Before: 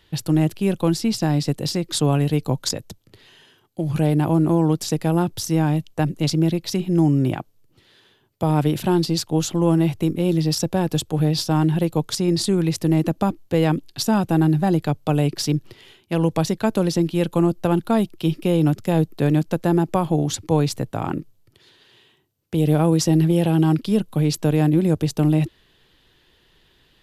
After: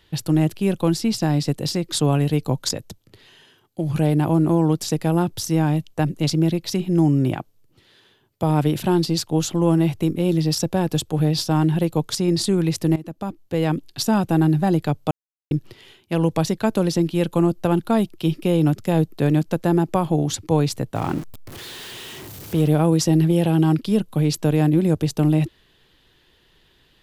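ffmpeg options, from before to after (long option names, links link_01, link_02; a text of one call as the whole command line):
ffmpeg -i in.wav -filter_complex "[0:a]asettb=1/sr,asplit=3[link_01][link_02][link_03];[link_01]atrim=end=20.954[link_04];[link_02]atrim=start=20.95:end=22.68,asetpts=PTS-STARTPTS,afade=type=in:duration=0.004:curve=qsin,afade=type=out:start_time=1.726:duration=0.004:curve=qsin,aeval=exprs='val(0)+0.5*0.0266*sgn(val(0))':channel_layout=same[link_05];[link_03]atrim=start=22.676[link_06];[link_04][link_05]acrossfade=duration=0.004:curve1=hsin:curve2=qsin[link_07];[link_07][link_06]acrossfade=duration=0.004:curve1=qsin:curve2=hsin,asplit=4[link_08][link_09][link_10][link_11];[link_08]atrim=end=12.96,asetpts=PTS-STARTPTS,afade=type=out:start_time=12.956:duration=0.004:curve=hsin:silence=0.133352[link_12];[link_09]atrim=start=12.96:end=15.11,asetpts=PTS-STARTPTS,afade=type=in:duration=0.95:silence=0.133352,afade=type=out:start_time=2.146:duration=0.004:curve=hsin[link_13];[link_10]atrim=start=15.11:end=15.51,asetpts=PTS-STARTPTS,volume=0[link_14];[link_11]atrim=start=15.51,asetpts=PTS-STARTPTS,afade=type=in:duration=0.004:curve=hsin[link_15];[link_12][link_13][link_14][link_15]concat=n=4:v=0:a=1" out.wav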